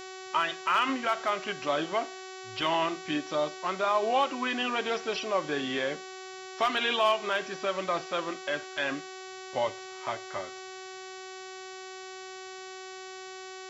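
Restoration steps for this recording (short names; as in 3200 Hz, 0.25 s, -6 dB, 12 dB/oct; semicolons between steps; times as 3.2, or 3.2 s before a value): clip repair -16.5 dBFS; de-hum 376.3 Hz, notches 20; expander -35 dBFS, range -21 dB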